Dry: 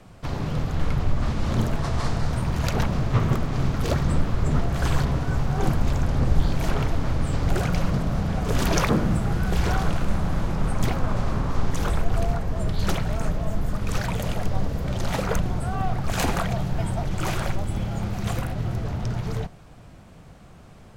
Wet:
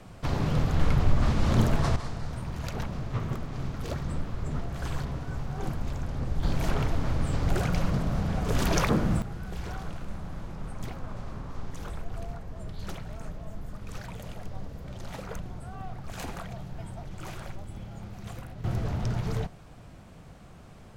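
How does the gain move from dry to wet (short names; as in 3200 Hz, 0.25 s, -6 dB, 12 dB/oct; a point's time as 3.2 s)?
+0.5 dB
from 1.96 s -10 dB
from 6.43 s -3.5 dB
from 9.22 s -13.5 dB
from 18.64 s -2 dB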